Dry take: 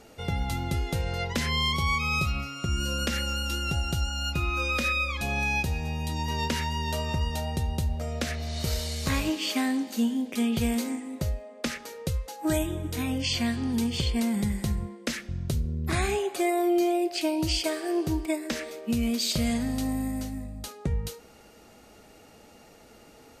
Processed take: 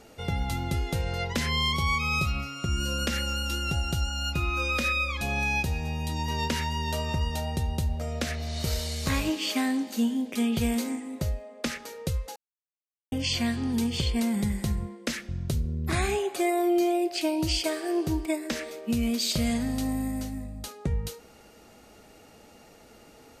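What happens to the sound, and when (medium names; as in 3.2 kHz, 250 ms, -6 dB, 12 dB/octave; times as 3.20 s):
12.36–13.12 s: mute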